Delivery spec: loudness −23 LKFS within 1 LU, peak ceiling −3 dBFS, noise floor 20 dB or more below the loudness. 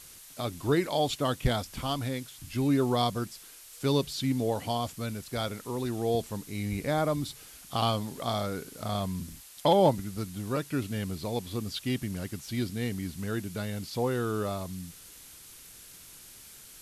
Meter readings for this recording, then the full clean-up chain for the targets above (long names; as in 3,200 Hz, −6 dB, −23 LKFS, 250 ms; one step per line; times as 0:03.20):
background noise floor −50 dBFS; target noise floor −51 dBFS; integrated loudness −31.0 LKFS; sample peak −12.5 dBFS; target loudness −23.0 LKFS
→ broadband denoise 6 dB, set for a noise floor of −50 dBFS
level +8 dB